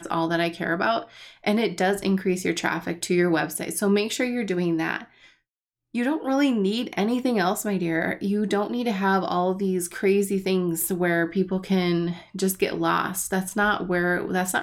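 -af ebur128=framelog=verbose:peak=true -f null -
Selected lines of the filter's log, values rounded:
Integrated loudness:
  I:         -24.3 LUFS
  Threshold: -34.5 LUFS
Loudness range:
  LRA:         1.8 LU
  Threshold: -44.5 LUFS
  LRA low:   -25.6 LUFS
  LRA high:  -23.8 LUFS
True peak:
  Peak:       -9.3 dBFS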